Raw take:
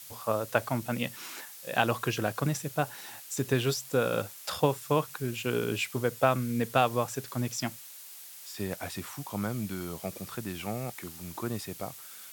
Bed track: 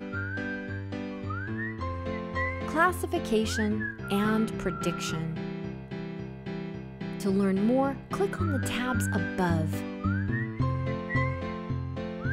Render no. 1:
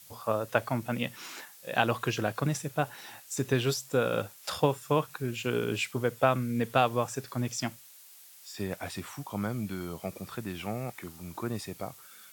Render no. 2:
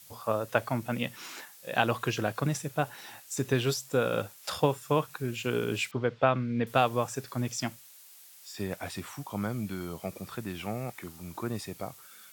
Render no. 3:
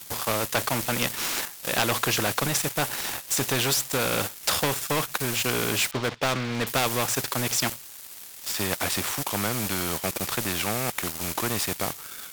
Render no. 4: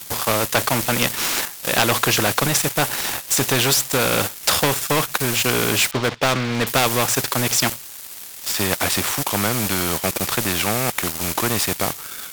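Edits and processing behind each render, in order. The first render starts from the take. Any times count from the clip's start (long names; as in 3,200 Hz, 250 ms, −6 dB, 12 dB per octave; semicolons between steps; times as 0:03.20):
noise reduction from a noise print 6 dB
0:05.91–0:06.67: low-pass filter 4,300 Hz 24 dB per octave
leveller curve on the samples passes 3; every bin compressed towards the loudest bin 2 to 1
level +6.5 dB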